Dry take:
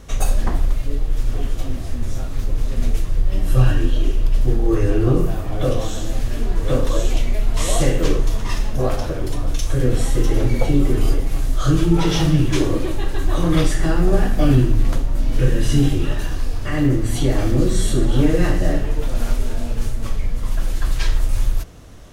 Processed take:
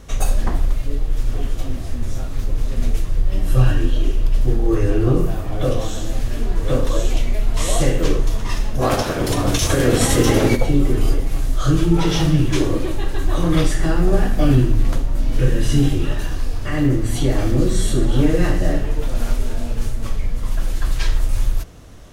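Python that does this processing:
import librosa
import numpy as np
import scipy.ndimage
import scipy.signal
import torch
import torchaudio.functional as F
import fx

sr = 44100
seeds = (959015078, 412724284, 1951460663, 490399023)

y = fx.spec_clip(x, sr, under_db=19, at=(8.81, 10.55), fade=0.02)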